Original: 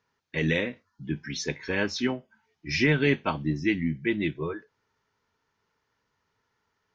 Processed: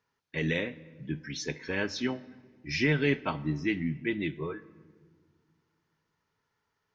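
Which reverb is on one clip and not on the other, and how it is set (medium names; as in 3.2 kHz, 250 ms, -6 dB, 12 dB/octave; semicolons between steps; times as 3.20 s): simulated room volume 2100 m³, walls mixed, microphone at 0.3 m; trim -4 dB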